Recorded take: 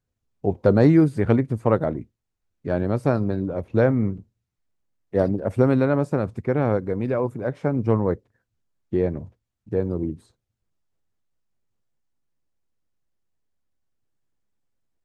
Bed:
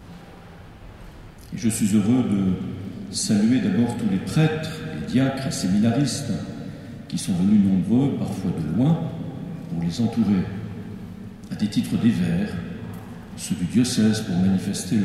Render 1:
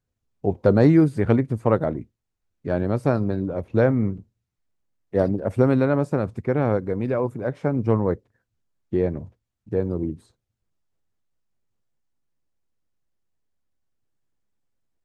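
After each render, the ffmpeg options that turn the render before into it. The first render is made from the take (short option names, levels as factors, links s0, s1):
-af anull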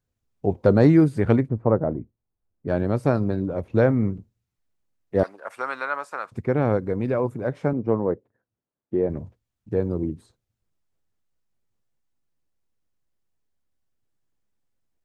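-filter_complex "[0:a]asplit=3[s0][s1][s2];[s0]afade=t=out:st=1.47:d=0.02[s3];[s1]lowpass=1000,afade=t=in:st=1.47:d=0.02,afade=t=out:st=2.67:d=0.02[s4];[s2]afade=t=in:st=2.67:d=0.02[s5];[s3][s4][s5]amix=inputs=3:normalize=0,asettb=1/sr,asplit=3[s6][s7][s8];[s6]atrim=end=5.234[s9];[s7]atrim=start=5.23:end=6.32,asetpts=PTS-STARTPTS,afade=t=in:d=0.004:c=qsin,afade=t=out:st=1.086:d=0.004:c=qsin,highpass=f=1200:t=q:w=1.9[s10];[s8]atrim=start=6.316[s11];[s9][s10]acrossfade=d=0.004:c1=hsin:c2=qsin[s12];[s12][s11]acrossfade=d=0.004:c1=qsin:c2=hsin,asettb=1/sr,asplit=3[s13][s14][s15];[s13]atrim=end=7.734[s16];[s14]atrim=start=7.73:end=9.1,asetpts=PTS-STARTPTS,afade=t=in:d=0.004:c=qsin,afade=t=out:st=1.366:d=0.004:c=qsin,bandpass=f=470:t=q:w=0.57[s17];[s15]atrim=start=9.096[s18];[s16][s17]acrossfade=d=0.004:c1=hsin:c2=qsin[s19];[s19][s18]acrossfade=d=0.004:c1=qsin:c2=hsin"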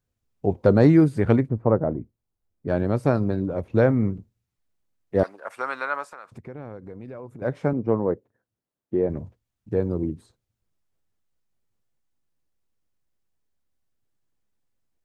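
-filter_complex "[0:a]asettb=1/sr,asplit=3[s0][s1][s2];[s0]atrim=end=6.074[s3];[s1]atrim=start=6.07:end=7.42,asetpts=PTS-STARTPTS,afade=t=in:d=0.004:c=qsin,afade=t=out:st=1.346:d=0.004:c=qsin,acompressor=threshold=0.01:ratio=3:attack=3.2:release=140:knee=1:detection=peak[s4];[s2]atrim=start=7.416[s5];[s3][s4]acrossfade=d=0.004:c1=hsin:c2=qsin[s6];[s6][s5]acrossfade=d=0.004:c1=qsin:c2=hsin"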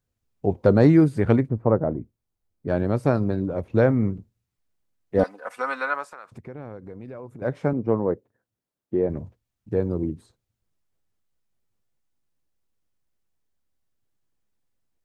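-filter_complex "[0:a]asettb=1/sr,asplit=3[s0][s1][s2];[s0]atrim=end=5.184[s3];[s1]atrim=start=5.18:end=5.94,asetpts=PTS-STARTPTS,afade=t=in:d=0.004:c=qsin,afade=t=out:st=0.756:d=0.004:c=qsin,aecho=1:1:4:0.68,atrim=end_sample=33516[s4];[s2]atrim=start=5.936[s5];[s3][s4]acrossfade=d=0.004:c1=hsin:c2=qsin[s6];[s6][s5]acrossfade=d=0.004:c1=qsin:c2=hsin"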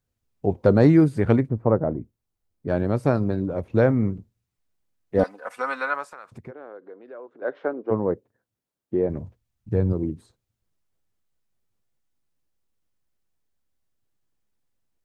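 -filter_complex "[0:a]asplit=3[s0][s1][s2];[s0]afade=t=out:st=6.5:d=0.02[s3];[s1]highpass=f=340:w=0.5412,highpass=f=340:w=1.3066,equalizer=f=890:t=q:w=4:g=-3,equalizer=f=1500:t=q:w=4:g=4,equalizer=f=2300:t=q:w=4:g=-9,lowpass=f=3600:w=0.5412,lowpass=f=3600:w=1.3066,afade=t=in:st=6.5:d=0.02,afade=t=out:st=7.9:d=0.02[s4];[s2]afade=t=in:st=7.9:d=0.02[s5];[s3][s4][s5]amix=inputs=3:normalize=0,asettb=1/sr,asplit=3[s6][s7][s8];[s6]atrim=end=9.184[s9];[s7]atrim=start=9.18:end=9.93,asetpts=PTS-STARTPTS,afade=t=in:d=0.004:c=qsin,afade=t=out:st=0.746:d=0.004:c=qsin,asubboost=boost=9.5:cutoff=200[s10];[s8]atrim=start=9.926[s11];[s9][s10]acrossfade=d=0.004:c1=hsin:c2=qsin[s12];[s12][s11]acrossfade=d=0.004:c1=qsin:c2=hsin"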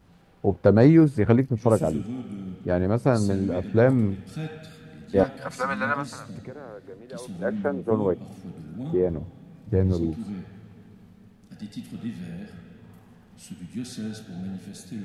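-filter_complex "[1:a]volume=0.188[s0];[0:a][s0]amix=inputs=2:normalize=0"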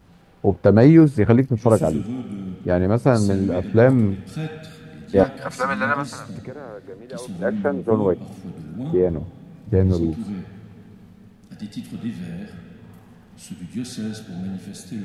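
-af "volume=1.68,alimiter=limit=0.794:level=0:latency=1"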